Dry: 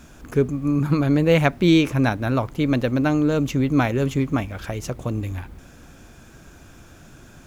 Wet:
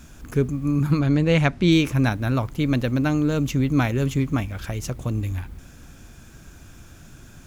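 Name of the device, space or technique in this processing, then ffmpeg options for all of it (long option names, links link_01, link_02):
smiley-face EQ: -filter_complex "[0:a]asettb=1/sr,asplit=3[link_01][link_02][link_03];[link_01]atrim=end=0.994[link_04];[link_02]atrim=start=0.99:end=1.72,asetpts=PTS-STARTPTS,afade=type=in:duration=0.004:curve=qsin,afade=type=out:start_time=0.726:duration=0.004:curve=qsin,lowpass=7300[link_05];[link_03]atrim=start=1.716[link_06];[link_04][link_05]acrossfade=duration=0.004:curve1=hsin:curve2=qsin[link_07];[link_07][link_06]acrossfade=duration=0.004:curve1=qsin:curve2=hsin,lowshelf=frequency=170:gain=4.5,equalizer=frequency=550:width_type=o:width=2:gain=-4,highshelf=frequency=5200:gain=4,volume=-1dB"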